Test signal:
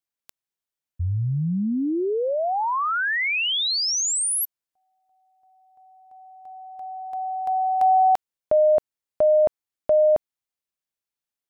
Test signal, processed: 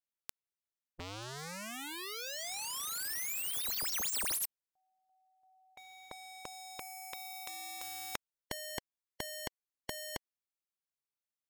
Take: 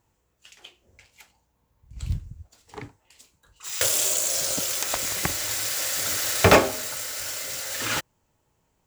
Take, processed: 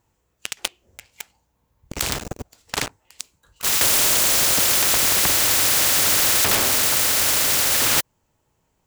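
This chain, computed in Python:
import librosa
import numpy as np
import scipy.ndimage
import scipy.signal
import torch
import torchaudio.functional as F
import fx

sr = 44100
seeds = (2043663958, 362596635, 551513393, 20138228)

y = fx.leveller(x, sr, passes=5)
y = fx.spectral_comp(y, sr, ratio=4.0)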